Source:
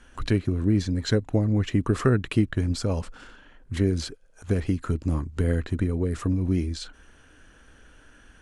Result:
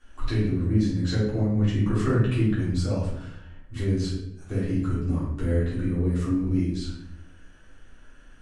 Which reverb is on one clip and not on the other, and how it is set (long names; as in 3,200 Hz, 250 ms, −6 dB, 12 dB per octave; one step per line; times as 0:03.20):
rectangular room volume 190 cubic metres, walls mixed, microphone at 3.4 metres
level −13.5 dB